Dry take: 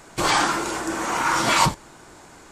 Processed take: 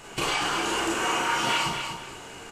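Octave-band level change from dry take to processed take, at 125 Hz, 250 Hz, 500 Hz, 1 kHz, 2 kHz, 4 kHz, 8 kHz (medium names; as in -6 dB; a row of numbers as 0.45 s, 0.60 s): -8.5 dB, -5.0 dB, -3.5 dB, -5.5 dB, -3.0 dB, -1.0 dB, -5.5 dB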